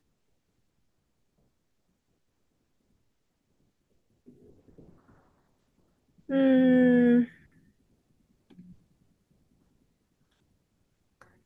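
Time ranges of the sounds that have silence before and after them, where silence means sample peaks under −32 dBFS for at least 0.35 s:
0:06.30–0:07.25

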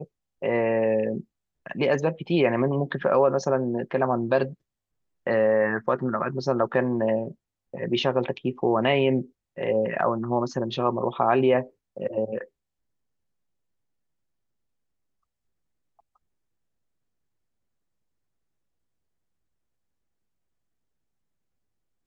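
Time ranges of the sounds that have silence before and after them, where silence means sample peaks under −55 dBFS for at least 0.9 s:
0:15.99–0:16.16

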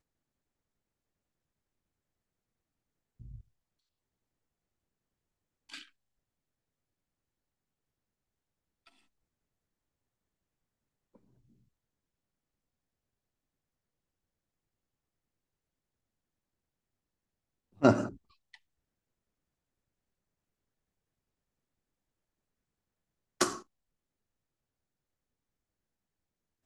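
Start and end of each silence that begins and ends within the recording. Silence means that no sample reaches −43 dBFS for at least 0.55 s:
0:03.39–0:05.70
0:05.83–0:17.82
0:18.54–0:23.41

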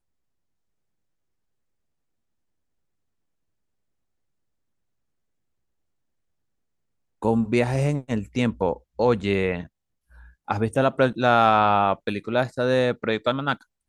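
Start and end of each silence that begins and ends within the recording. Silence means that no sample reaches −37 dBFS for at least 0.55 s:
0:09.65–0:10.48

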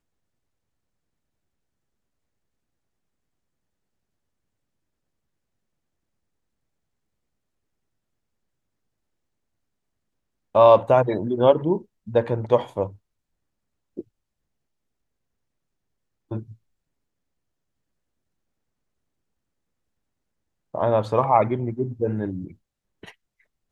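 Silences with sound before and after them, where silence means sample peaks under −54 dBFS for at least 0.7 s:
0:12.98–0:13.97
0:14.08–0:16.31
0:16.56–0:20.74

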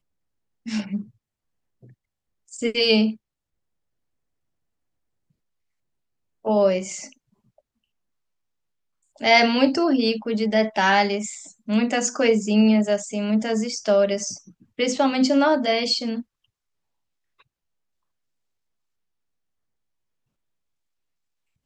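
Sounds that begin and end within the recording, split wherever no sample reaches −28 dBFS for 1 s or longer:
0:02.59–0:03.11
0:06.46–0:07.04
0:09.21–0:16.21

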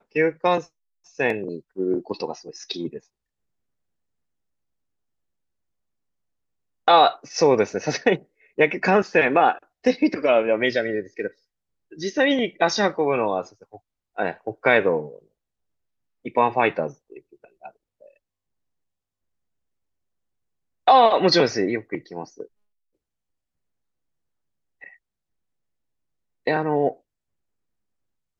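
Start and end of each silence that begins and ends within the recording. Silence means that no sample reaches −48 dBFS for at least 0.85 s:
0:03.04–0:06.87
0:15.24–0:16.25
0:18.11–0:20.87
0:22.47–0:24.81
0:24.95–0:26.46

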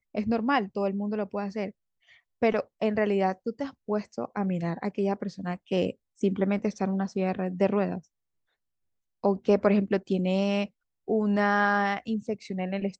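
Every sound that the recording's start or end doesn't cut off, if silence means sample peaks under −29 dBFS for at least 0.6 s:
0:02.43–0:07.98

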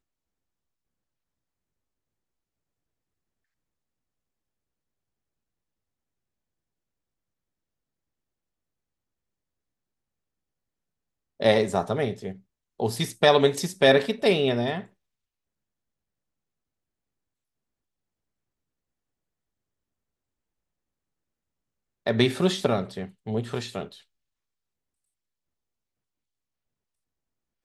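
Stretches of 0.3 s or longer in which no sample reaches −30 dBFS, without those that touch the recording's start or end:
0:12.31–0:12.80
0:14.81–0:22.07

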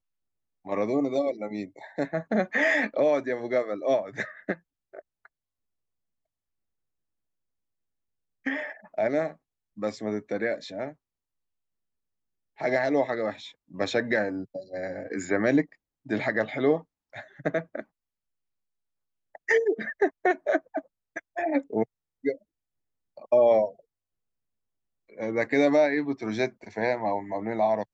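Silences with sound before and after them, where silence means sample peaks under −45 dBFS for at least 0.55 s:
0:05.26–0:08.46
0:10.93–0:12.58
0:17.82–0:19.35
0:22.36–0:23.17
0:23.80–0:25.10

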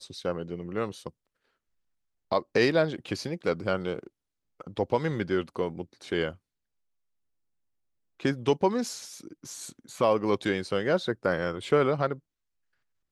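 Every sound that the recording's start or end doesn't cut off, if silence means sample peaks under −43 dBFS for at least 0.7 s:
0:02.32–0:06.35
0:08.20–0:12.18

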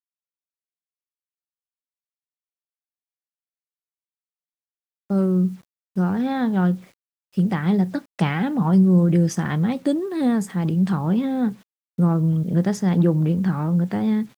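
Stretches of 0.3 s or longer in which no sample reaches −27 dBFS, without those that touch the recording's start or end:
0:05.51–0:05.97
0:06.75–0:07.38
0:11.50–0:11.99

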